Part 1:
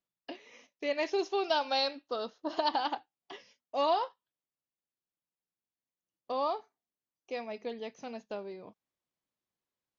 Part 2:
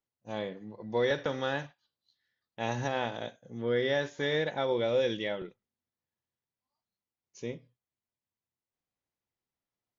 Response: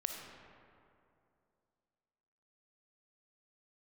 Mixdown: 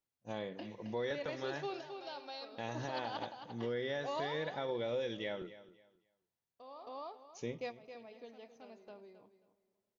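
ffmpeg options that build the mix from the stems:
-filter_complex "[0:a]agate=range=-9dB:threshold=-52dB:ratio=16:detection=peak,alimiter=limit=-23dB:level=0:latency=1:release=63,adelay=300,volume=-3.5dB,asplit=3[a][b][c];[b]volume=-20.5dB[d];[c]volume=-10.5dB[e];[1:a]volume=-2dB,asplit=3[f][g][h];[g]volume=-19dB[i];[h]apad=whole_len=453604[j];[a][j]sidechaingate=range=-25dB:threshold=-57dB:ratio=16:detection=peak[k];[2:a]atrim=start_sample=2205[l];[d][l]afir=irnorm=-1:irlink=0[m];[e][i]amix=inputs=2:normalize=0,aecho=0:1:268|536|804:1|0.21|0.0441[n];[k][f][m][n]amix=inputs=4:normalize=0,alimiter=level_in=4dB:limit=-24dB:level=0:latency=1:release=487,volume=-4dB"

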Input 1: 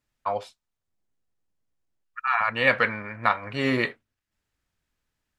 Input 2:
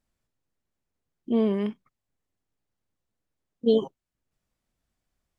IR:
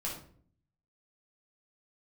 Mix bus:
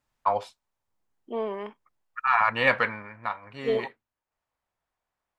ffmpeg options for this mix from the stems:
-filter_complex "[0:a]volume=-0.5dB,afade=t=out:st=2.52:d=0.74:silence=0.266073[a];[1:a]acrossover=split=440 2600:gain=0.0891 1 0.224[b][c][d];[b][c][d]amix=inputs=3:normalize=0,volume=0.5dB[e];[a][e]amix=inputs=2:normalize=0,equalizer=f=930:t=o:w=0.61:g=6.5,aeval=exprs='0.422*(cos(1*acos(clip(val(0)/0.422,-1,1)))-cos(1*PI/2))+0.00266*(cos(6*acos(clip(val(0)/0.422,-1,1)))-cos(6*PI/2))':c=same"

